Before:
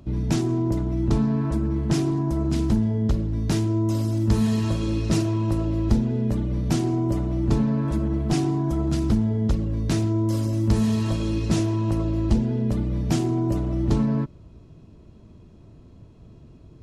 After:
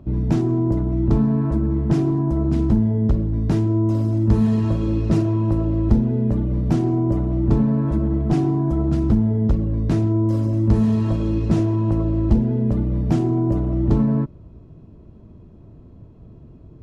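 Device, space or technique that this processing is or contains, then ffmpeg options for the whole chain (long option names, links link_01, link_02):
through cloth: -af "highshelf=frequency=2300:gain=-17,volume=4dB"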